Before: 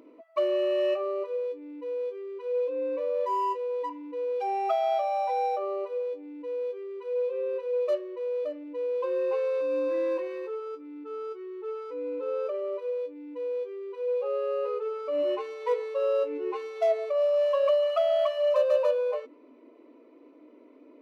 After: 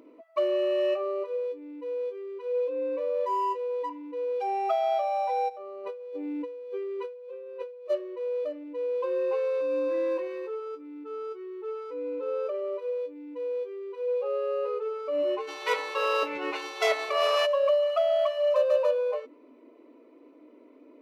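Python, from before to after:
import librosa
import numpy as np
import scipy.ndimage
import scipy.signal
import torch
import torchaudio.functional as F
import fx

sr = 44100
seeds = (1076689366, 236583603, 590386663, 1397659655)

y = fx.over_compress(x, sr, threshold_db=-40.0, ratio=-1.0, at=(5.48, 7.89), fade=0.02)
y = fx.spec_clip(y, sr, under_db=25, at=(15.47, 17.45), fade=0.02)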